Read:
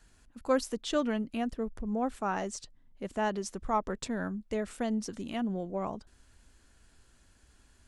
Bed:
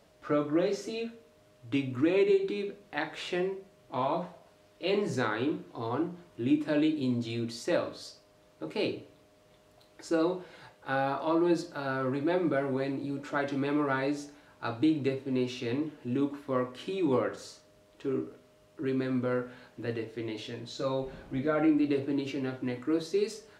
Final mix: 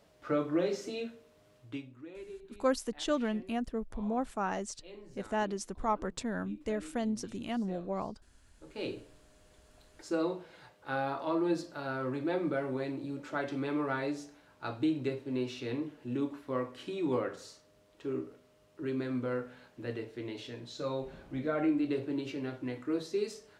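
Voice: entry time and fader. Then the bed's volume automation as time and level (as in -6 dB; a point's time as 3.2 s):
2.15 s, -1.5 dB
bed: 1.58 s -2.5 dB
1.99 s -21.5 dB
8.49 s -21.5 dB
8.91 s -4 dB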